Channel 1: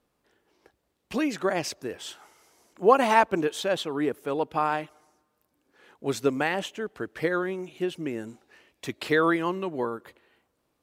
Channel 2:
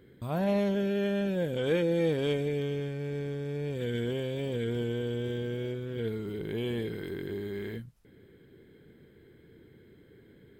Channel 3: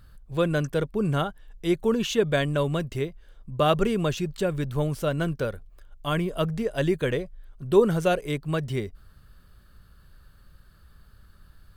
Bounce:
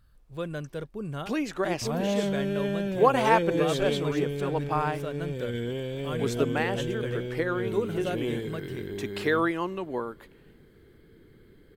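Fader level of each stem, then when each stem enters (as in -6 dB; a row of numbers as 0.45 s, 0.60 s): -2.5 dB, 0.0 dB, -10.0 dB; 0.15 s, 1.60 s, 0.00 s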